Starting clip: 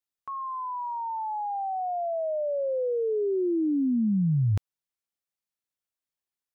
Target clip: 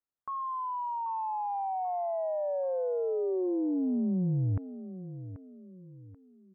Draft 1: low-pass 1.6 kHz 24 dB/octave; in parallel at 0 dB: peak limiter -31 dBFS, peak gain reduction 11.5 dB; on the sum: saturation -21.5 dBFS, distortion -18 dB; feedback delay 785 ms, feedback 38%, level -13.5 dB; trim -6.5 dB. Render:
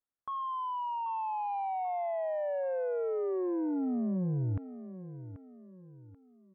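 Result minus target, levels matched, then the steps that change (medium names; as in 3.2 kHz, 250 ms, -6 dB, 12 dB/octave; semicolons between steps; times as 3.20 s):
saturation: distortion +17 dB
change: saturation -11.5 dBFS, distortion -34 dB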